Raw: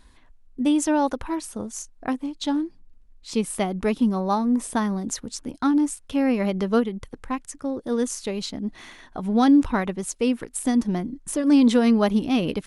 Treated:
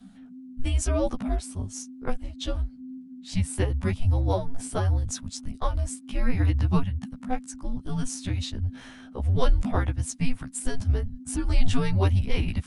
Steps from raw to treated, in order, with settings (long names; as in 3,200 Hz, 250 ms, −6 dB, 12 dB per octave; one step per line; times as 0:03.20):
every overlapping window played backwards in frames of 31 ms
low-shelf EQ 190 Hz +9 dB
frequency shifter −270 Hz